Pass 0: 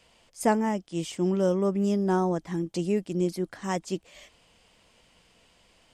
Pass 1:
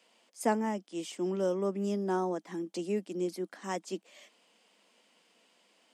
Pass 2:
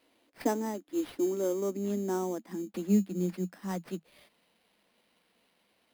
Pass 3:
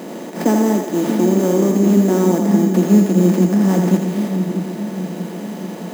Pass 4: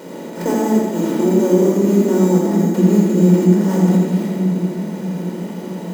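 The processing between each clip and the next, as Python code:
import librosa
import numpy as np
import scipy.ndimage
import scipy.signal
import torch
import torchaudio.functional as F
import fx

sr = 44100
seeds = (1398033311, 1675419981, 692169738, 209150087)

y1 = scipy.signal.sosfilt(scipy.signal.butter(8, 200.0, 'highpass', fs=sr, output='sos'), x)
y1 = F.gain(torch.from_numpy(y1), -5.0).numpy()
y2 = fx.filter_sweep_highpass(y1, sr, from_hz=290.0, to_hz=130.0, start_s=1.28, end_s=4.89, q=7.3)
y2 = fx.sample_hold(y2, sr, seeds[0], rate_hz=6900.0, jitter_pct=0)
y2 = F.gain(torch.from_numpy(y2), -4.5).numpy()
y3 = fx.bin_compress(y2, sr, power=0.4)
y3 = fx.low_shelf_res(y3, sr, hz=110.0, db=-10.5, q=3.0)
y3 = fx.echo_split(y3, sr, split_hz=350.0, low_ms=633, high_ms=82, feedback_pct=52, wet_db=-4.0)
y3 = F.gain(torch.from_numpy(y3), 7.5).numpy()
y4 = fx.room_shoebox(y3, sr, seeds[1], volume_m3=3200.0, walls='furnished', distance_m=4.7)
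y4 = F.gain(torch.from_numpy(y4), -5.5).numpy()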